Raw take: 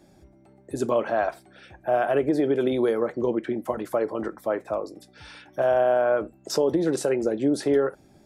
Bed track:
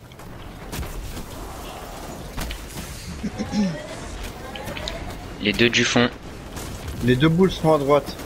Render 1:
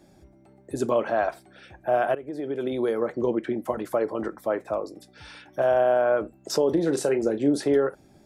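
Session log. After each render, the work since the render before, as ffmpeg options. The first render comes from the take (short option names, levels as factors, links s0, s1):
-filter_complex "[0:a]asettb=1/sr,asplit=3[s0][s1][s2];[s0]atrim=end=6.664[s3];[s1]atrim=start=6.66:end=7.58,asetpts=PTS-STARTPTS,afade=t=in:d=0.004:c=qsin,afade=t=out:st=0.916:d=0.004:c=qsin,asplit=2[s4][s5];[s5]adelay=35,volume=0.266[s6];[s4][s6]amix=inputs=2:normalize=0,atrim=end_sample=40572[s7];[s2]atrim=start=7.576[s8];[s3][s7]acrossfade=d=0.004:c1=hsin:c2=qsin[s9];[s9][s8]acrossfade=d=0.004:c1=qsin:c2=hsin,asplit=2[s10][s11];[s10]atrim=end=2.15,asetpts=PTS-STARTPTS,afade=t=out:st=2.146:d=0.004:c=hsin:silence=0.11885[s12];[s11]atrim=start=2.15,asetpts=PTS-STARTPTS,afade=t=in:d=1:silence=0.11885[s13];[s12][s13]concat=n=2:v=0:a=1"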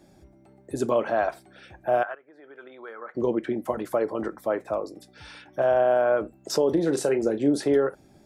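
-filter_complex "[0:a]asettb=1/sr,asplit=3[s0][s1][s2];[s0]atrim=end=2.034[s3];[s1]atrim=start=2.03:end=3.15,asetpts=PTS-STARTPTS,afade=t=in:d=0.004:c=qsin,afade=t=out:st=1.116:d=0.004:c=qsin,bandpass=f=1400:t=q:w=2.6[s4];[s2]atrim=start=3.146[s5];[s3][s4]acrossfade=d=0.004:c1=hsin:c2=qsin[s6];[s6][s5]acrossfade=d=0.004:c1=qsin:c2=hsin,asettb=1/sr,asplit=3[s7][s8][s9];[s7]atrim=end=5.444[s10];[s8]atrim=start=5.44:end=5.91,asetpts=PTS-STARTPTS,afade=t=in:d=0.004:c=qsin,afade=t=out:st=0.466:d=0.004:c=qsin,highshelf=f=5700:g=-7[s11];[s9]atrim=start=5.906[s12];[s10][s11]acrossfade=d=0.004:c1=hsin:c2=qsin[s13];[s13][s12]acrossfade=d=0.004:c1=qsin:c2=hsin"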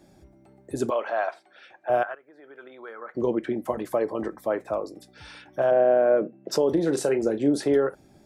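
-filter_complex "[0:a]asettb=1/sr,asplit=3[s0][s1][s2];[s0]atrim=end=0.904[s3];[s1]atrim=start=0.9:end=1.9,asetpts=PTS-STARTPTS,afade=t=in:d=0.004:c=qsin,afade=t=out:st=0.996:d=0.004:c=qsin,highpass=600,lowpass=5000[s4];[s2]atrim=start=1.896[s5];[s3][s4]acrossfade=d=0.004:c1=hsin:c2=qsin[s6];[s6][s5]acrossfade=d=0.004:c1=qsin:c2=hsin,asettb=1/sr,asplit=3[s7][s8][s9];[s7]atrim=end=3.744[s10];[s8]atrim=start=3.74:end=4.51,asetpts=PTS-STARTPTS,afade=t=in:d=0.004:c=qsin,afade=t=out:st=0.766:d=0.004:c=qsin,asuperstop=centerf=1400:order=4:qfactor=7.7[s11];[s9]atrim=start=4.506[s12];[s10][s11]acrossfade=d=0.004:c1=hsin:c2=qsin[s13];[s13][s12]acrossfade=d=0.004:c1=qsin:c2=hsin,asplit=3[s14][s15][s16];[s14]afade=t=out:st=5.7:d=0.02[s17];[s15]highpass=f=140:w=0.5412,highpass=f=140:w=1.3066,equalizer=f=160:t=q:w=4:g=10,equalizer=f=230:t=q:w=4:g=4,equalizer=f=350:t=q:w=4:g=4,equalizer=f=520:t=q:w=4:g=6,equalizer=f=910:t=q:w=4:g=-7,equalizer=f=1300:t=q:w=4:g=-7,lowpass=f=2500:w=0.5412,lowpass=f=2500:w=1.3066,afade=t=in:st=5.7:d=0.02,afade=t=out:st=6.51:d=0.02[s18];[s16]afade=t=in:st=6.51:d=0.02[s19];[s17][s18][s19]amix=inputs=3:normalize=0"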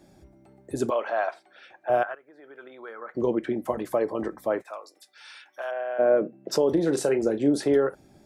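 -filter_complex "[0:a]asplit=3[s0][s1][s2];[s0]afade=t=out:st=4.61:d=0.02[s3];[s1]highpass=1200,afade=t=in:st=4.61:d=0.02,afade=t=out:st=5.98:d=0.02[s4];[s2]afade=t=in:st=5.98:d=0.02[s5];[s3][s4][s5]amix=inputs=3:normalize=0"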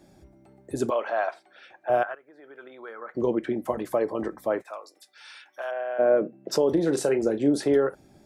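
-af anull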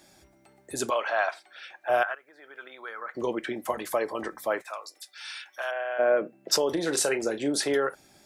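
-af "tiltshelf=f=790:g=-9"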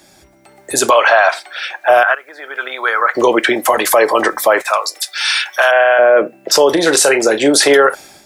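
-filter_complex "[0:a]acrossover=split=400[s0][s1];[s1]dynaudnorm=f=420:g=3:m=5.62[s2];[s0][s2]amix=inputs=2:normalize=0,alimiter=level_in=3.16:limit=0.891:release=50:level=0:latency=1"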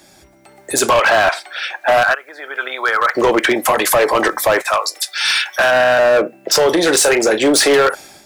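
-af "volume=2.66,asoftclip=hard,volume=0.376"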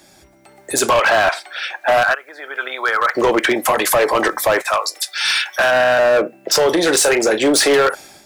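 -af "volume=0.841"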